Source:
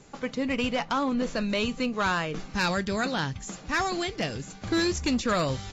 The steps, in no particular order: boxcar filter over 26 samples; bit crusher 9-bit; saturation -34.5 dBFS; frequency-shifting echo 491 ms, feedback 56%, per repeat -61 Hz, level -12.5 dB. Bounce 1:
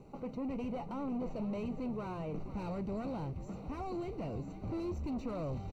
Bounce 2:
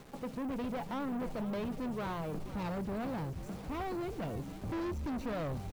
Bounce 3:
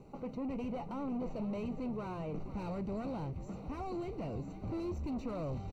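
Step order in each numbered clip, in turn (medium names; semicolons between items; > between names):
saturation > bit crusher > boxcar filter > frequency-shifting echo; boxcar filter > bit crusher > saturation > frequency-shifting echo; bit crusher > saturation > boxcar filter > frequency-shifting echo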